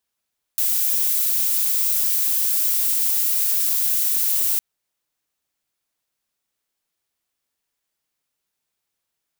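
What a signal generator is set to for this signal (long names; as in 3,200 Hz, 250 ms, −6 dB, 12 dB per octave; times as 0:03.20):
noise violet, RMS −20 dBFS 4.01 s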